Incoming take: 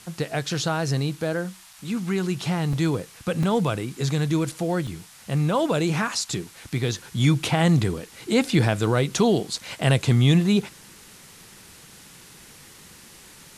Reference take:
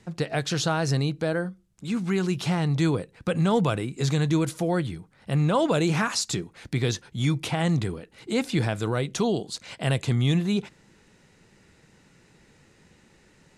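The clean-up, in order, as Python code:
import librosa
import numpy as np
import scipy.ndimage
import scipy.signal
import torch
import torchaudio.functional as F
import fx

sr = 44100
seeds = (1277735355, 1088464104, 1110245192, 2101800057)

y = fx.fix_interpolate(x, sr, at_s=(1.73, 2.73, 3.43, 4.52, 4.87, 9.81), length_ms=3.6)
y = fx.noise_reduce(y, sr, print_start_s=10.9, print_end_s=11.4, reduce_db=11.0)
y = fx.gain(y, sr, db=fx.steps((0.0, 0.0), (6.98, -5.0)))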